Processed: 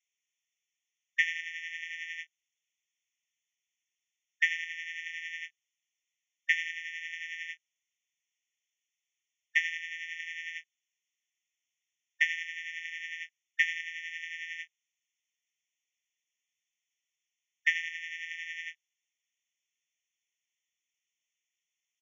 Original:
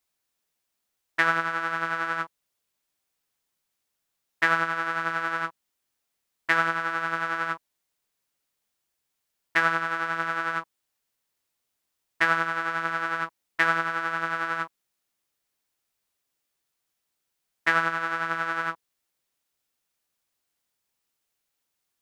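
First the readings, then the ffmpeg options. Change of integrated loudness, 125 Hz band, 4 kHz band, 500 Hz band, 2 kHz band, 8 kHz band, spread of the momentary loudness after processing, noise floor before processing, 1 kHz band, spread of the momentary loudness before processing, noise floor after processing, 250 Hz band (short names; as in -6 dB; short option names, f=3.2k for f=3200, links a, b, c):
-7.5 dB, under -40 dB, -1.5 dB, under -40 dB, -7.0 dB, -2.0 dB, 12 LU, -81 dBFS, under -40 dB, 9 LU, under -85 dBFS, under -40 dB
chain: -af "aresample=16000,aresample=44100,afftfilt=real='re*eq(mod(floor(b*sr/1024/1800),2),1)':imag='im*eq(mod(floor(b*sr/1024/1800),2),1)':win_size=1024:overlap=0.75"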